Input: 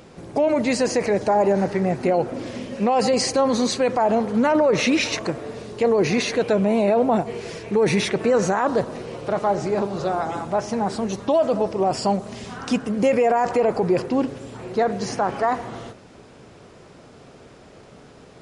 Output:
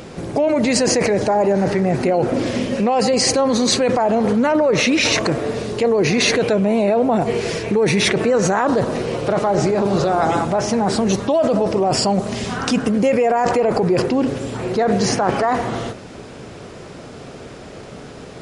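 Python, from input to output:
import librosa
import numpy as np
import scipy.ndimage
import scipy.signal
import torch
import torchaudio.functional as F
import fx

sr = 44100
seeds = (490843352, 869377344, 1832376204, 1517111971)

p1 = fx.peak_eq(x, sr, hz=970.0, db=-2.0, octaves=0.77)
p2 = fx.over_compress(p1, sr, threshold_db=-26.0, ratio=-0.5)
p3 = p1 + F.gain(torch.from_numpy(p2), 0.0).numpy()
y = F.gain(torch.from_numpy(p3), 1.5).numpy()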